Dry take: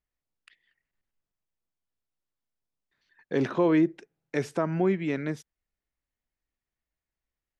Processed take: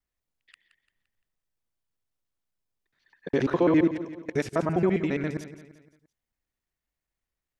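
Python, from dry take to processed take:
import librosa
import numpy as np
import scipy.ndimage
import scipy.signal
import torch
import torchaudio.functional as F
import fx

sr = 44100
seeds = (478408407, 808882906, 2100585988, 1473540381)

y = fx.local_reverse(x, sr, ms=68.0)
y = fx.echo_feedback(y, sr, ms=172, feedback_pct=44, wet_db=-13)
y = F.gain(torch.from_numpy(y), 1.5).numpy()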